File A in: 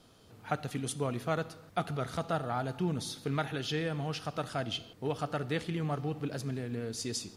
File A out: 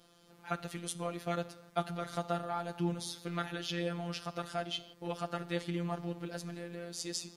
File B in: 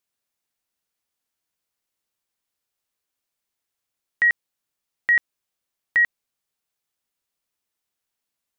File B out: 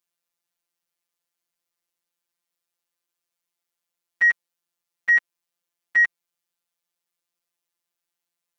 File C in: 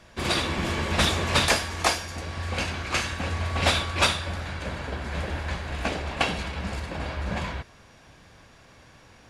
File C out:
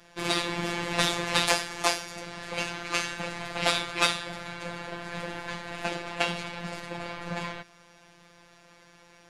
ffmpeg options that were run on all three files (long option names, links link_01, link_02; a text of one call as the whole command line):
ffmpeg -i in.wav -af "acontrast=27,lowshelf=frequency=130:gain=-8.5,afftfilt=real='hypot(re,im)*cos(PI*b)':imag='0':win_size=1024:overlap=0.75,volume=-3.5dB" out.wav